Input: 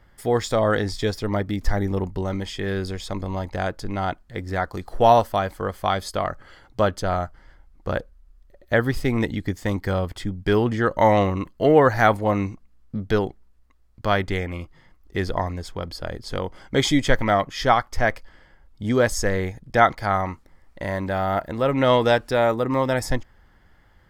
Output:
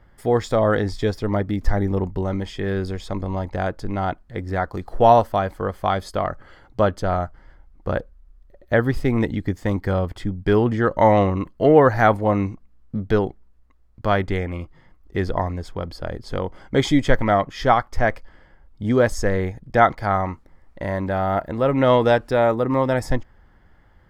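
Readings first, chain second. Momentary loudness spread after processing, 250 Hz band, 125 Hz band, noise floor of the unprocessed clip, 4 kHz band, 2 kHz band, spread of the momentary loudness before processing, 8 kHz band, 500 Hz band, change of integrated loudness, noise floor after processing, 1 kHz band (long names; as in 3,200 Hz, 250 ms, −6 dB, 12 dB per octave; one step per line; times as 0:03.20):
13 LU, +2.5 dB, +2.5 dB, −56 dBFS, −4.0 dB, −0.5 dB, 13 LU, can't be measured, +2.0 dB, +1.5 dB, −53 dBFS, +1.5 dB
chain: high-shelf EQ 2,300 Hz −9 dB
level +2.5 dB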